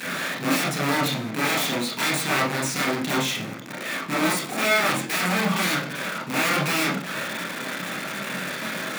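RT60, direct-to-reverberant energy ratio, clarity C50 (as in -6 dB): 0.45 s, -3.5 dB, 7.5 dB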